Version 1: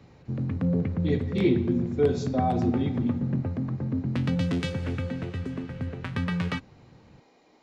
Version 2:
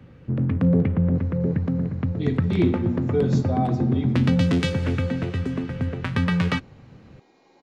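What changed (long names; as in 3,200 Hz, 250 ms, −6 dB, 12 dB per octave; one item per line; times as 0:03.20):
speech: entry +1.15 s
background +6.5 dB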